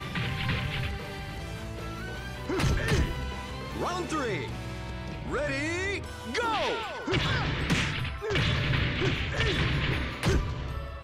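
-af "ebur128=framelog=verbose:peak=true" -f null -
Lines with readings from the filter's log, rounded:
Integrated loudness:
  I:         -30.1 LUFS
  Threshold: -40.0 LUFS
Loudness range:
  LRA:         4.2 LU
  Threshold: -50.0 LUFS
  LRA low:   -32.1 LUFS
  LRA high:  -27.9 LUFS
True peak:
  Peak:      -13.6 dBFS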